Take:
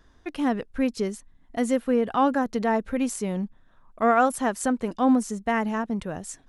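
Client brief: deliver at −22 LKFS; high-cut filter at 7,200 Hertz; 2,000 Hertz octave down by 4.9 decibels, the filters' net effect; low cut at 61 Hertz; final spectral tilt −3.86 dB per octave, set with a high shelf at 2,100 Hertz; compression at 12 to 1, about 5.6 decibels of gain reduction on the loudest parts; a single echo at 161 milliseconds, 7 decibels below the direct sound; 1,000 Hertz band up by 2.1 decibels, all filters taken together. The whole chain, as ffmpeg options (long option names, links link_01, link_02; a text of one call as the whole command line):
ffmpeg -i in.wav -af "highpass=61,lowpass=7200,equalizer=frequency=1000:width_type=o:gain=5.5,equalizer=frequency=2000:width_type=o:gain=-7,highshelf=frequency=2100:gain=-4.5,acompressor=threshold=-20dB:ratio=12,aecho=1:1:161:0.447,volume=5dB" out.wav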